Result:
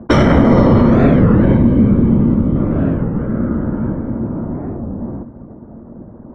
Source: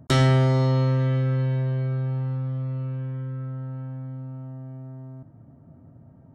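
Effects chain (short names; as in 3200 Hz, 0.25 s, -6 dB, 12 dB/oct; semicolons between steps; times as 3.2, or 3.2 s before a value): octaver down 1 oct, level 0 dB; 1.57–2.56 fifteen-band EQ 630 Hz -9 dB, 1600 Hz -9 dB, 6300 Hz -10 dB; whisperiser; reverb RT60 0.15 s, pre-delay 3 ms, DRR 13.5 dB; low-pass opened by the level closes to 1500 Hz, open at -8 dBFS; maximiser +4.5 dB; record warp 33 1/3 rpm, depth 250 cents; gain -1 dB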